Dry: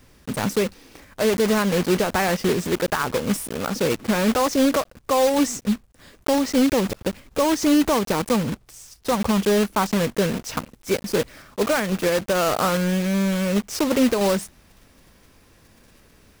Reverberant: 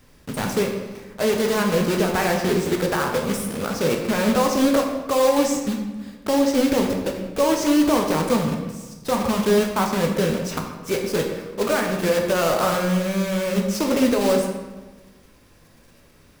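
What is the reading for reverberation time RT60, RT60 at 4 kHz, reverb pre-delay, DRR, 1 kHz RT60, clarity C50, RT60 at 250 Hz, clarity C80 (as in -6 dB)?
1.2 s, 0.85 s, 11 ms, 1.5 dB, 1.2 s, 5.0 dB, 1.5 s, 6.5 dB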